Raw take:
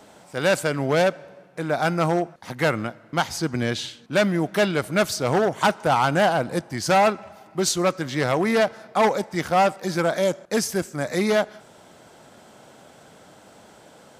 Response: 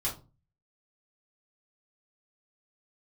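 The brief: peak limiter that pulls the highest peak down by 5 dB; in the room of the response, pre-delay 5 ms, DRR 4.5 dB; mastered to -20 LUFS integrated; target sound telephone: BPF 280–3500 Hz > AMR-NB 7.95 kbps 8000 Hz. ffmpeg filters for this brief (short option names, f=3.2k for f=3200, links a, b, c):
-filter_complex "[0:a]alimiter=limit=-12dB:level=0:latency=1,asplit=2[a][b];[1:a]atrim=start_sample=2205,adelay=5[c];[b][c]afir=irnorm=-1:irlink=0,volume=-9dB[d];[a][d]amix=inputs=2:normalize=0,highpass=280,lowpass=3.5k,volume=5.5dB" -ar 8000 -c:a libopencore_amrnb -b:a 7950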